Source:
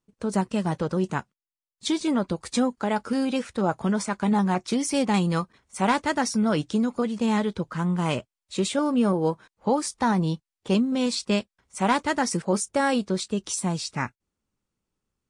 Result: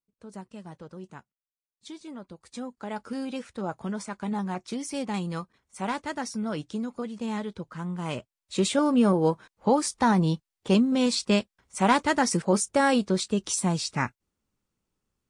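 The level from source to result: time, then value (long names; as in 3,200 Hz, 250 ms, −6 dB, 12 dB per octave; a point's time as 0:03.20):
0:02.38 −17 dB
0:03.01 −8 dB
0:07.99 −8 dB
0:08.63 +1 dB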